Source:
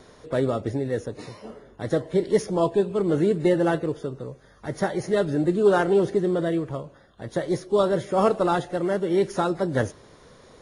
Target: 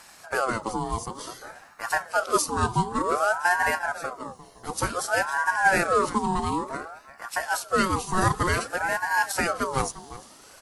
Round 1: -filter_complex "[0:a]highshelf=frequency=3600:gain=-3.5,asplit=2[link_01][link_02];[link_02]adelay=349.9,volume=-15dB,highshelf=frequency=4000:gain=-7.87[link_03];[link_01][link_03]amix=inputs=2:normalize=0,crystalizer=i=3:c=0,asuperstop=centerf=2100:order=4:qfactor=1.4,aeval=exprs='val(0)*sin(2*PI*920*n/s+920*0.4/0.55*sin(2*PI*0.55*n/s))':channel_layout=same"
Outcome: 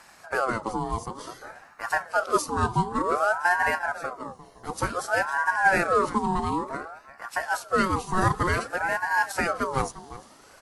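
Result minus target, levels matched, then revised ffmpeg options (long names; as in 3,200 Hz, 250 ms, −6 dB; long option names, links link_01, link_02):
8,000 Hz band −6.0 dB
-filter_complex "[0:a]highshelf=frequency=3600:gain=4,asplit=2[link_01][link_02];[link_02]adelay=349.9,volume=-15dB,highshelf=frequency=4000:gain=-7.87[link_03];[link_01][link_03]amix=inputs=2:normalize=0,crystalizer=i=3:c=0,asuperstop=centerf=2100:order=4:qfactor=1.4,aeval=exprs='val(0)*sin(2*PI*920*n/s+920*0.4/0.55*sin(2*PI*0.55*n/s))':channel_layout=same"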